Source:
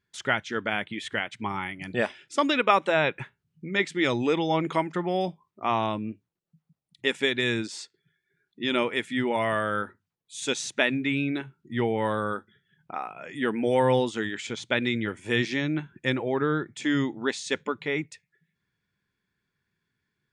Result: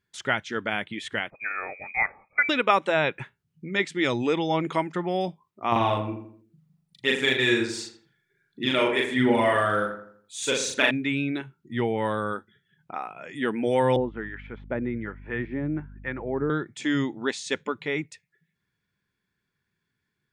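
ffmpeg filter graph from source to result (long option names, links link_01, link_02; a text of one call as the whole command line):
ffmpeg -i in.wav -filter_complex "[0:a]asettb=1/sr,asplit=3[link_01][link_02][link_03];[link_01]atrim=end=1.304[link_04];[link_02]atrim=start=1.3:end=2.49,asetpts=PTS-STARTPTS,afade=type=in:duration=0.004:curve=qsin,afade=type=out:start_time=1.186:duration=0.004:curve=qsin,lowpass=frequency=2200:width_type=q:width=0.5098,lowpass=frequency=2200:width_type=q:width=0.6013,lowpass=frequency=2200:width_type=q:width=0.9,lowpass=frequency=2200:width_type=q:width=2.563,afreqshift=-2600,aecho=1:1:1.5:0.35,atrim=end_sample=52479[link_05];[link_03]atrim=start=2.486[link_06];[link_04][link_05]acrossfade=duration=0.004:curve1=hsin:curve2=qsin[link_07];[link_07][link_06]acrossfade=duration=0.004:curve1=qsin:curve2=hsin,asettb=1/sr,asplit=3[link_08][link_09][link_10];[link_08]atrim=end=5.724[link_11];[link_09]atrim=start=5.72:end=10.91,asetpts=PTS-STARTPTS,afade=type=in:duration=0.004:curve=qsin,afade=type=out:start_time=5.186:duration=0.004:curve=qsin,aphaser=in_gain=1:out_gain=1:delay=3.1:decay=0.5:speed=1.4:type=triangular,asplit=2[link_12][link_13];[link_13]adelay=39,volume=-2dB[link_14];[link_12][link_14]amix=inputs=2:normalize=0,atrim=end_sample=228879,asplit=2[link_15][link_16];[link_16]adelay=83,lowpass=frequency=2000:poles=1,volume=-7.5dB,asplit=2[link_17][link_18];[link_18]adelay=83,lowpass=frequency=2000:poles=1,volume=0.43,asplit=2[link_19][link_20];[link_20]adelay=83,lowpass=frequency=2000:poles=1,volume=0.43,asplit=2[link_21][link_22];[link_22]adelay=83,lowpass=frequency=2000:poles=1,volume=0.43,asplit=2[link_23][link_24];[link_24]adelay=83,lowpass=frequency=2000:poles=1,volume=0.43[link_25];[link_15][link_17][link_19][link_21][link_23][link_25]amix=inputs=6:normalize=0,atrim=end_sample=228879[link_26];[link_10]atrim=start=10.906[link_27];[link_11][link_26]acrossfade=duration=0.004:curve1=hsin:curve2=qsin[link_28];[link_28][link_27]acrossfade=duration=0.004:curve1=qsin:curve2=hsin,asettb=1/sr,asplit=3[link_29][link_30][link_31];[link_29]atrim=end=13.964[link_32];[link_30]atrim=start=13.96:end=16.5,asetpts=PTS-STARTPTS,afade=type=in:duration=0.004:curve=qsin,afade=type=out:start_time=2.536:duration=0.004:curve=qsin,lowpass=frequency=1900:width=0.5412,lowpass=frequency=1900:width=1.3066,acrossover=split=820[link_33][link_34];[link_33]aeval=exprs='val(0)*(1-0.7/2+0.7/2*cos(2*PI*1.2*n/s))':channel_layout=same[link_35];[link_34]aeval=exprs='val(0)*(1-0.7/2-0.7/2*cos(2*PI*1.2*n/s))':channel_layout=same[link_36];[link_35][link_36]amix=inputs=2:normalize=0,aeval=exprs='val(0)+0.00708*(sin(2*PI*50*n/s)+sin(2*PI*2*50*n/s)/2+sin(2*PI*3*50*n/s)/3+sin(2*PI*4*50*n/s)/4+sin(2*PI*5*50*n/s)/5)':channel_layout=same[link_37];[link_31]atrim=start=16.496[link_38];[link_32][link_37]acrossfade=duration=0.004:curve1=hsin:curve2=qsin[link_39];[link_39][link_38]acrossfade=duration=0.004:curve1=qsin:curve2=hsin" out.wav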